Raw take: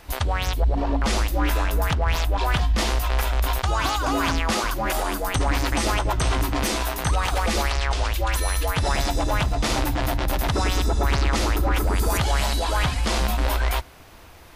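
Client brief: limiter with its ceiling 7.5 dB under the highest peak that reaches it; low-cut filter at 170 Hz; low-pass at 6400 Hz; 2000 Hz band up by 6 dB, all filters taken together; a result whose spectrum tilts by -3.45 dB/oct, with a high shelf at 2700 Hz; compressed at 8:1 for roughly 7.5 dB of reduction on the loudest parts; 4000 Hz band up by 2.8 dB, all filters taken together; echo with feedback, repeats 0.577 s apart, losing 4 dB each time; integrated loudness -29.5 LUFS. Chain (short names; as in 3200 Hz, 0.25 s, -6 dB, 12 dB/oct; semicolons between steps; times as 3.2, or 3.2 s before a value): HPF 170 Hz; LPF 6400 Hz; bell 2000 Hz +9 dB; high shelf 2700 Hz -7.5 dB; bell 4000 Hz +7 dB; compressor 8:1, threshold -25 dBFS; limiter -18 dBFS; feedback echo 0.577 s, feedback 63%, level -4 dB; gain -1.5 dB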